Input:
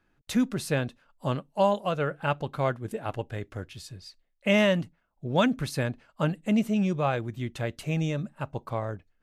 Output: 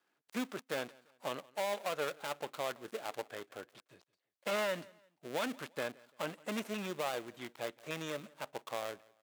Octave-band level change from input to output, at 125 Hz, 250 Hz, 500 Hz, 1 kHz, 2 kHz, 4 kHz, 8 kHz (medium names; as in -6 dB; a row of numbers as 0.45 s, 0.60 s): -23.5 dB, -16.5 dB, -9.5 dB, -9.5 dB, -8.0 dB, -7.0 dB, -5.0 dB